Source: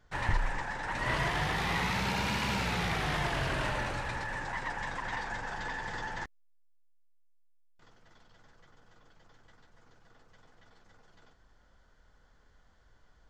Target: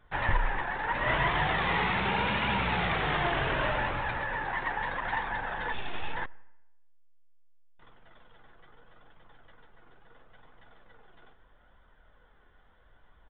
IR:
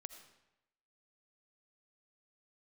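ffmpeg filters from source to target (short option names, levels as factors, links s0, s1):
-filter_complex "[0:a]lowshelf=f=220:g=-6,asettb=1/sr,asplit=3[s0][s1][s2];[s0]atrim=end=5.724[s3];[s1]atrim=start=5.72:end=6.15,asetpts=PTS-STARTPTS,afade=t=in:d=0.004:c=qsin,afade=t=out:st=0.426:d=0.004:c=qsin,aeval=exprs='abs(val(0))':c=same[s4];[s2]atrim=start=6.146[s5];[s3][s4]acrossfade=d=0.004:c1=hsin:c2=qsin[s6];[s6][s5]acrossfade=d=0.004:c1=qsin:c2=hsin,flanger=delay=0.8:depth=2.1:regen=68:speed=0.76:shape=triangular,asplit=2[s7][s8];[1:a]atrim=start_sample=2205,lowpass=2000[s9];[s8][s9]afir=irnorm=-1:irlink=0,volume=0.422[s10];[s7][s10]amix=inputs=2:normalize=0,aresample=8000,aresample=44100,volume=2.51"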